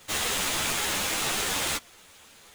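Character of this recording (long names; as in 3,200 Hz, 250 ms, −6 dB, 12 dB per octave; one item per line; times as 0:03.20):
aliases and images of a low sample rate 17,000 Hz, jitter 0%
a shimmering, thickened sound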